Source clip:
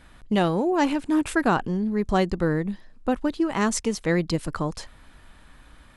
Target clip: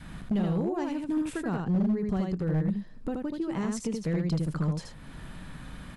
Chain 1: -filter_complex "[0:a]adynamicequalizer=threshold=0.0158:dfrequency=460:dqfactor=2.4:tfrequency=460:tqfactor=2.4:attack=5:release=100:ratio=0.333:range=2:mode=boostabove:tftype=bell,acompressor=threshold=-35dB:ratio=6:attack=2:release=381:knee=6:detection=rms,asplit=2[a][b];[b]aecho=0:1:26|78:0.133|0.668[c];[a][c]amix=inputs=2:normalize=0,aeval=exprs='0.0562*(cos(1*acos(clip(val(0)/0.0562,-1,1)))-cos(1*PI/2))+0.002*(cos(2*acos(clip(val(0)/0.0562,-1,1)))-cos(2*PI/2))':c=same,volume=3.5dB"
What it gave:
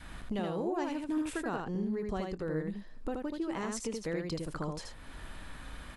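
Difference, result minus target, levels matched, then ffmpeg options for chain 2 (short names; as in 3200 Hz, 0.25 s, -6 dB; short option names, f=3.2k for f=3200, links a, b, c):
125 Hz band -5.5 dB
-filter_complex "[0:a]adynamicequalizer=threshold=0.0158:dfrequency=460:dqfactor=2.4:tfrequency=460:tqfactor=2.4:attack=5:release=100:ratio=0.333:range=2:mode=boostabove:tftype=bell,acompressor=threshold=-35dB:ratio=6:attack=2:release=381:knee=6:detection=rms,equalizer=f=160:t=o:w=1.2:g=13.5,asplit=2[a][b];[b]aecho=0:1:26|78:0.133|0.668[c];[a][c]amix=inputs=2:normalize=0,aeval=exprs='0.0562*(cos(1*acos(clip(val(0)/0.0562,-1,1)))-cos(1*PI/2))+0.002*(cos(2*acos(clip(val(0)/0.0562,-1,1)))-cos(2*PI/2))':c=same,volume=3.5dB"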